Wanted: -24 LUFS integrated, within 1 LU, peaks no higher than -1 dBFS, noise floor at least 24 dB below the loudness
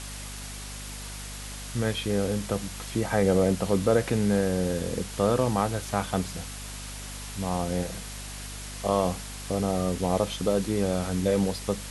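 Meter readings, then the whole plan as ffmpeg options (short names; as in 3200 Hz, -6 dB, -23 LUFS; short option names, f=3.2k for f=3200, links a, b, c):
hum 50 Hz; harmonics up to 250 Hz; hum level -38 dBFS; noise floor -38 dBFS; noise floor target -52 dBFS; loudness -28.0 LUFS; peak -9.5 dBFS; loudness target -24.0 LUFS
-> -af "bandreject=f=50:t=h:w=6,bandreject=f=100:t=h:w=6,bandreject=f=150:t=h:w=6,bandreject=f=200:t=h:w=6,bandreject=f=250:t=h:w=6"
-af "afftdn=nr=14:nf=-38"
-af "volume=4dB"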